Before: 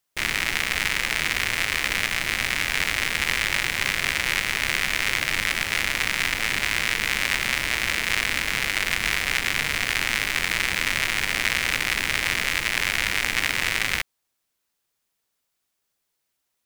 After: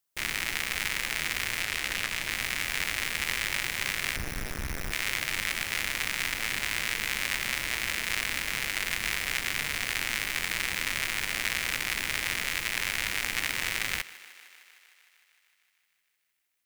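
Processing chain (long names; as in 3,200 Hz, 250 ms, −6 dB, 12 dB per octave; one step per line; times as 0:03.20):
0:04.16–0:04.92: comparator with hysteresis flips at −23.5 dBFS
high-shelf EQ 7,600 Hz +7 dB
feedback echo with a high-pass in the loop 153 ms, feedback 76%, high-pass 240 Hz, level −19 dB
0:01.60–0:02.31: highs frequency-modulated by the lows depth 0.34 ms
level −7.5 dB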